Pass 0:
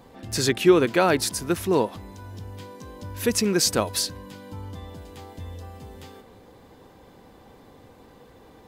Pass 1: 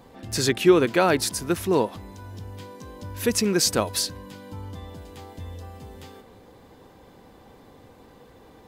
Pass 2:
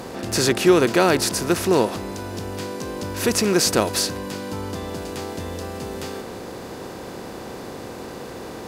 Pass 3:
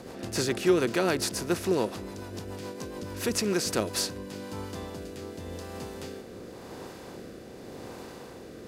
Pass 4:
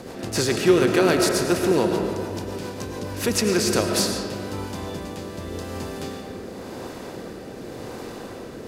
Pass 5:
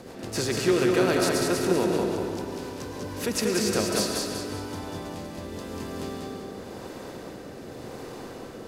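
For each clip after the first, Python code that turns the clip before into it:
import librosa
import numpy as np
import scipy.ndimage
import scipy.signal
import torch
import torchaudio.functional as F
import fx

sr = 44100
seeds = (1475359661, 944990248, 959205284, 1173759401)

y1 = x
y2 = fx.bin_compress(y1, sr, power=0.6)
y3 = fx.rotary_switch(y2, sr, hz=7.0, then_hz=0.9, switch_at_s=3.36)
y3 = y3 * librosa.db_to_amplitude(-6.5)
y4 = fx.rev_freeverb(y3, sr, rt60_s=2.4, hf_ratio=0.4, predelay_ms=65, drr_db=3.0)
y4 = y4 * librosa.db_to_amplitude(5.5)
y5 = fx.echo_feedback(y4, sr, ms=191, feedback_pct=40, wet_db=-3.5)
y5 = y5 * librosa.db_to_amplitude(-5.5)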